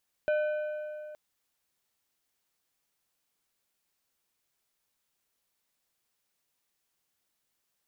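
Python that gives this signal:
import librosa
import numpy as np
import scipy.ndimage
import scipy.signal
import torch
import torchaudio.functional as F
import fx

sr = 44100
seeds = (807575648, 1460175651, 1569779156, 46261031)

y = fx.strike_metal(sr, length_s=0.87, level_db=-23.5, body='plate', hz=606.0, decay_s=2.84, tilt_db=10.0, modes=5)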